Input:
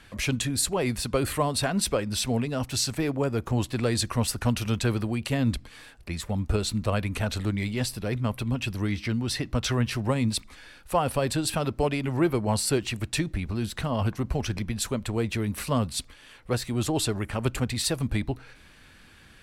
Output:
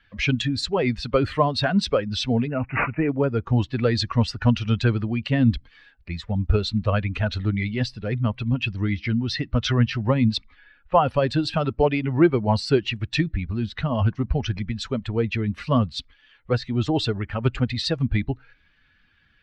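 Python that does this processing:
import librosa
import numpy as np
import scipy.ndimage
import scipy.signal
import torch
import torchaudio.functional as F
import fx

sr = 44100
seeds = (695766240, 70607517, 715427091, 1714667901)

y = fx.resample_bad(x, sr, factor=8, down='none', up='filtered', at=(2.47, 3.09))
y = fx.env_lowpass(y, sr, base_hz=2400.0, full_db=-20.5, at=(9.78, 10.97))
y = fx.bin_expand(y, sr, power=1.5)
y = scipy.signal.sosfilt(scipy.signal.butter(4, 4600.0, 'lowpass', fs=sr, output='sos'), y)
y = y * librosa.db_to_amplitude(8.0)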